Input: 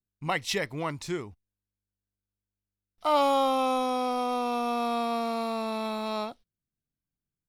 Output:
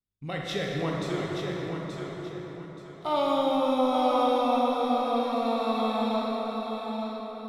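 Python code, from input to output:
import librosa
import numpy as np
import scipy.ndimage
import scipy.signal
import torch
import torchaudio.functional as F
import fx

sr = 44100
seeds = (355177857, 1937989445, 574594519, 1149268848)

p1 = fx.quant_float(x, sr, bits=4, at=(3.25, 4.04))
p2 = fx.high_shelf(p1, sr, hz=2700.0, db=-8.0)
p3 = fx.rotary(p2, sr, hz=0.65)
p4 = fx.peak_eq(p3, sr, hz=3600.0, db=11.0, octaves=0.23)
p5 = p4 + fx.echo_feedback(p4, sr, ms=878, feedback_pct=29, wet_db=-6.5, dry=0)
y = fx.rev_plate(p5, sr, seeds[0], rt60_s=4.6, hf_ratio=0.45, predelay_ms=0, drr_db=-3.0)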